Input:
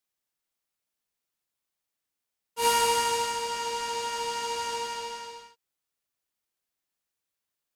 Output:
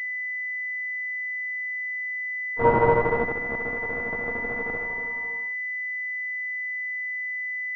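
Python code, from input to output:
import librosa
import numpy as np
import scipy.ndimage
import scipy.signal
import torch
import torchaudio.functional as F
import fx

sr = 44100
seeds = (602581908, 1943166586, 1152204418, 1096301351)

y = fx.cheby_harmonics(x, sr, harmonics=(2, 7, 8), levels_db=(-15, -15, -27), full_scale_db=-12.0)
y = fx.fold_sine(y, sr, drive_db=6, ceiling_db=-11.0)
y = fx.pwm(y, sr, carrier_hz=2000.0)
y = y * 10.0 ** (4.0 / 20.0)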